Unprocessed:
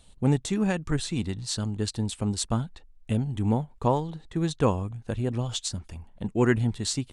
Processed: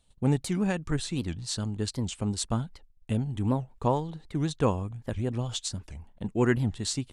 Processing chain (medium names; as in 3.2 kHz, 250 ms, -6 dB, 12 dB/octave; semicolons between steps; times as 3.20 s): gate -49 dBFS, range -10 dB; warped record 78 rpm, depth 250 cents; trim -2 dB